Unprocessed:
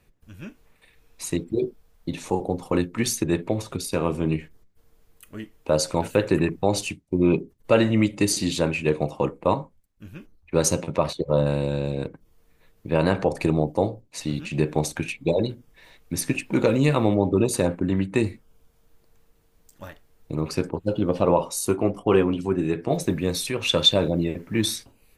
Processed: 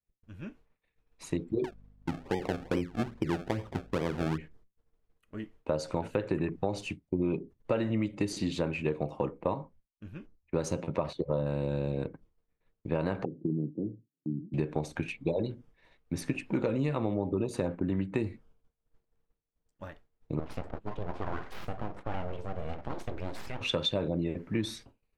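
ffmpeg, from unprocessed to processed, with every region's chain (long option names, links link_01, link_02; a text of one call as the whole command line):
ffmpeg -i in.wav -filter_complex "[0:a]asettb=1/sr,asplit=3[link_01][link_02][link_03];[link_01]atrim=end=1.644[link_04];[link_02]atrim=start=1.64:end=4.38,asetpts=PTS-STARTPTS,afade=type=in:duration=0.004:curve=qsin,afade=type=out:start_time=2.736:duration=0.004:curve=qsin,lowpass=1200,acrusher=samples=31:mix=1:aa=0.000001:lfo=1:lforange=31:lforate=2.4,aeval=exprs='val(0)+0.00282*(sin(2*PI*50*n/s)+sin(2*PI*2*50*n/s)/2+sin(2*PI*3*50*n/s)/3+sin(2*PI*4*50*n/s)/4+sin(2*PI*5*50*n/s)/5)':channel_layout=same[link_05];[link_03]atrim=start=4.376[link_06];[link_04][link_05]acrossfade=duration=0.004:curve1=hsin:curve2=qsin[link_07];[link_07][link_06]acrossfade=duration=0.004:curve1=qsin:curve2=hsin,asettb=1/sr,asplit=3[link_08][link_09][link_10];[link_08]atrim=end=13.254[link_11];[link_09]atrim=start=13.25:end=14.54,asetpts=PTS-STARTPTS,afade=type=in:duration=0.004:curve=qsin,afade=type=out:start_time=1.286:duration=0.004:curve=qsin,asuperpass=centerf=200:order=8:qfactor=0.83,lowshelf=frequency=210:gain=-6[link_12];[link_10]atrim=start=14.536[link_13];[link_11][link_12]acrossfade=duration=0.004:curve1=hsin:curve2=qsin[link_14];[link_14][link_13]acrossfade=duration=0.004:curve1=qsin:curve2=hsin,asettb=1/sr,asplit=3[link_15][link_16][link_17];[link_15]atrim=end=20.394[link_18];[link_16]atrim=start=20.39:end=23.61,asetpts=PTS-STARTPTS,afade=type=in:duration=0.004:curve=qsin,afade=type=out:start_time=3.216:duration=0.004:curve=qsin,acompressor=threshold=-31dB:ratio=2:attack=3.2:release=140:knee=1:detection=peak,aeval=exprs='abs(val(0))':channel_layout=same[link_19];[link_17]atrim=start=23.606[link_20];[link_18][link_19]acrossfade=duration=0.004:curve1=hsin:curve2=qsin[link_21];[link_21][link_20]acrossfade=duration=0.004:curve1=qsin:curve2=hsin,aemphasis=mode=reproduction:type=75fm,agate=range=-33dB:threshold=-45dB:ratio=3:detection=peak,acompressor=threshold=-22dB:ratio=5,volume=-4dB" out.wav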